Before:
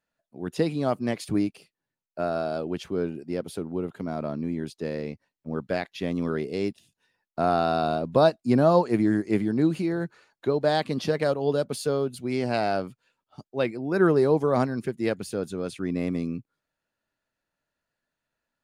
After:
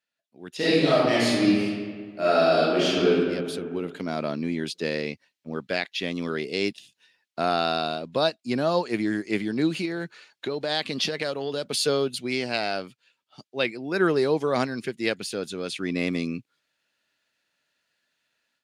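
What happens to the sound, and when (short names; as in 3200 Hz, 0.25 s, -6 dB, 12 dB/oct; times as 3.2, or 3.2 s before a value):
0.56–3.11 reverb throw, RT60 1.7 s, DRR -12 dB
9.85–11.74 compressor, threshold -25 dBFS
whole clip: weighting filter D; AGC gain up to 11.5 dB; gain -8 dB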